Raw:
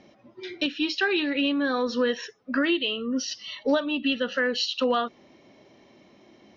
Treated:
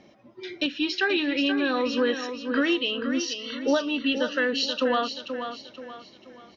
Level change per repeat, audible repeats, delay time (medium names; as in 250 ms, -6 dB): -8.5 dB, 4, 481 ms